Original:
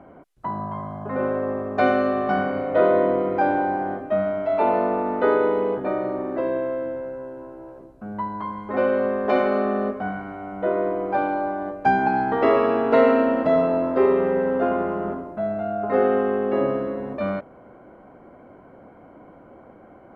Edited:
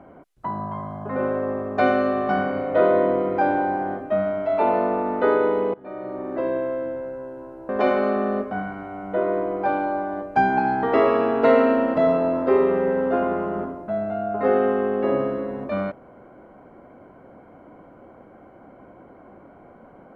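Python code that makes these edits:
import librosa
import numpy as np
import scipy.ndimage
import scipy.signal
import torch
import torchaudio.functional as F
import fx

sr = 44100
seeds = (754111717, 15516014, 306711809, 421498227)

y = fx.edit(x, sr, fx.fade_in_from(start_s=5.74, length_s=0.71, floor_db=-23.0),
    fx.cut(start_s=7.69, length_s=1.49), tone=tone)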